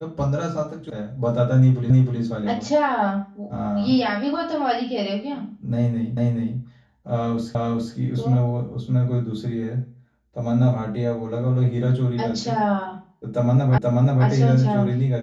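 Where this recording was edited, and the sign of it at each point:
0.90 s: sound stops dead
1.90 s: repeat of the last 0.31 s
6.17 s: repeat of the last 0.42 s
7.55 s: repeat of the last 0.41 s
13.78 s: repeat of the last 0.48 s

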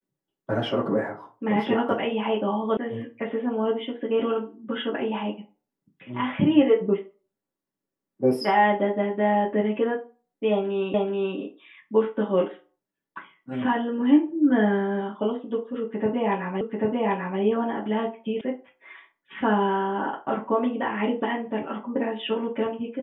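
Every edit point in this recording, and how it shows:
2.77 s: sound stops dead
10.94 s: repeat of the last 0.43 s
16.61 s: repeat of the last 0.79 s
18.41 s: sound stops dead

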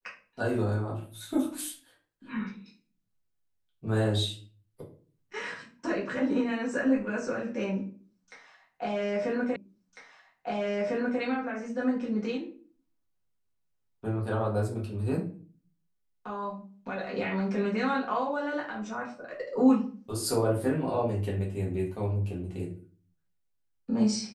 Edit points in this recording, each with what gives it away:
9.56 s: repeat of the last 1.65 s

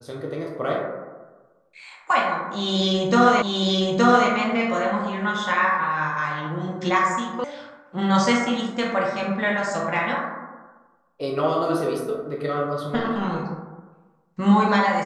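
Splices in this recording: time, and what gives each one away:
3.42 s: repeat of the last 0.87 s
7.44 s: sound stops dead

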